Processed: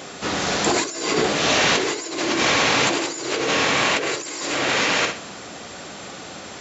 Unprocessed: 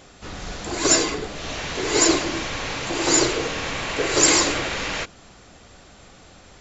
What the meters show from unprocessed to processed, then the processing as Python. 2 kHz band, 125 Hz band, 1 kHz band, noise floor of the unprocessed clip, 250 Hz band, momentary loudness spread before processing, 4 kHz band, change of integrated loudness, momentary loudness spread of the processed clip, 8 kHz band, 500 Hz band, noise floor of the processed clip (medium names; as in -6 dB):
+5.0 dB, +0.5 dB, +5.0 dB, -49 dBFS, 0.0 dB, 14 LU, +3.0 dB, +1.0 dB, 18 LU, no reading, +2.0 dB, -37 dBFS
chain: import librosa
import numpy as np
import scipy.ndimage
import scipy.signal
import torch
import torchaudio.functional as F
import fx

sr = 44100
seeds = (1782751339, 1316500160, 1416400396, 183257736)

p1 = scipy.signal.sosfilt(scipy.signal.butter(2, 180.0, 'highpass', fs=sr, output='sos'), x)
p2 = p1 + fx.room_flutter(p1, sr, wall_m=11.7, rt60_s=0.39, dry=0)
p3 = fx.over_compress(p2, sr, threshold_db=-30.0, ratio=-1.0)
y = p3 * librosa.db_to_amplitude(7.0)